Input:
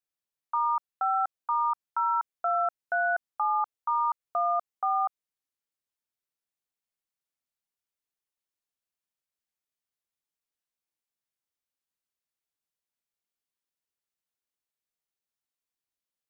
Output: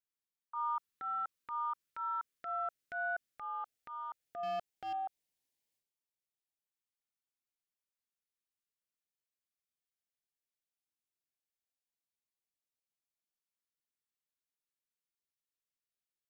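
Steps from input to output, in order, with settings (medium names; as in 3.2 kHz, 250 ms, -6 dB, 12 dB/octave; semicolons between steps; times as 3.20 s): 4.43–4.93 s: waveshaping leveller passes 1; transient shaper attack -7 dB, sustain +11 dB; LFO notch saw up 0.15 Hz 600–1500 Hz; trim -6.5 dB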